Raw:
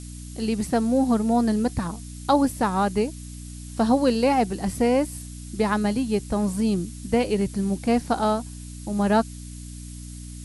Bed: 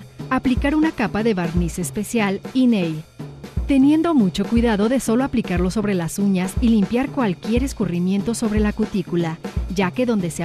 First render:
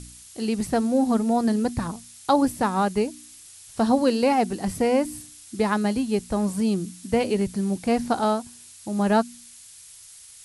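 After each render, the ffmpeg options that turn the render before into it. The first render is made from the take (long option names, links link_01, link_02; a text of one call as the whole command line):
ffmpeg -i in.wav -af "bandreject=frequency=60:width_type=h:width=4,bandreject=frequency=120:width_type=h:width=4,bandreject=frequency=180:width_type=h:width=4,bandreject=frequency=240:width_type=h:width=4,bandreject=frequency=300:width_type=h:width=4" out.wav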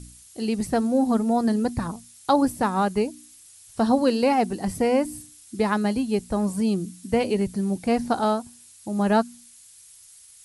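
ffmpeg -i in.wav -af "afftdn=noise_reduction=6:noise_floor=-47" out.wav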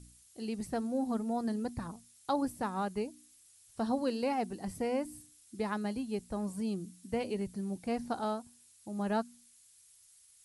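ffmpeg -i in.wav -af "volume=-12dB" out.wav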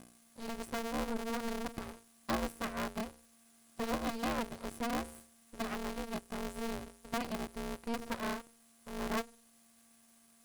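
ffmpeg -i in.wav -af "aeval=exprs='max(val(0),0)':channel_layout=same,aeval=exprs='val(0)*sgn(sin(2*PI*230*n/s))':channel_layout=same" out.wav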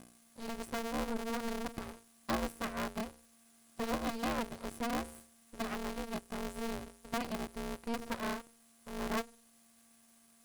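ffmpeg -i in.wav -af anull out.wav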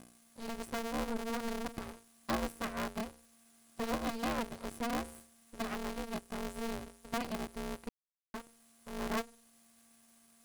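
ffmpeg -i in.wav -filter_complex "[0:a]asplit=3[link_01][link_02][link_03];[link_01]atrim=end=7.89,asetpts=PTS-STARTPTS,afade=type=out:start_time=7.886:duration=0.004:curve=hsin[link_04];[link_02]atrim=start=7.89:end=8.34,asetpts=PTS-STARTPTS,volume=0[link_05];[link_03]atrim=start=8.34,asetpts=PTS-STARTPTS,afade=type=in:duration=0.004:curve=hsin[link_06];[link_04][link_05][link_06]concat=n=3:v=0:a=1" out.wav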